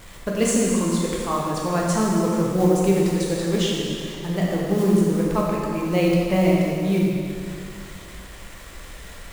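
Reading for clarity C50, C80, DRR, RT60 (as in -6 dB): -1.5 dB, 0.0 dB, -4.0 dB, 2.4 s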